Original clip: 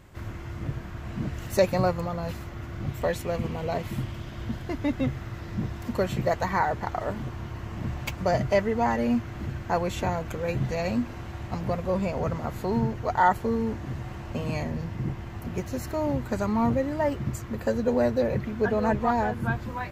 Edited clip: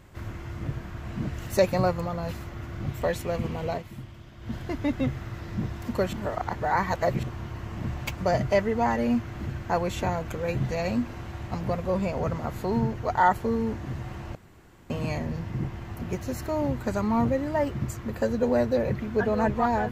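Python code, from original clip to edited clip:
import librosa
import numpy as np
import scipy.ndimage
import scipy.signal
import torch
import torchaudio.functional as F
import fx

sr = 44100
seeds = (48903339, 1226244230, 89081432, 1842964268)

y = fx.edit(x, sr, fx.fade_down_up(start_s=3.7, length_s=0.85, db=-9.5, fade_s=0.14),
    fx.reverse_span(start_s=6.13, length_s=1.1),
    fx.insert_room_tone(at_s=14.35, length_s=0.55), tone=tone)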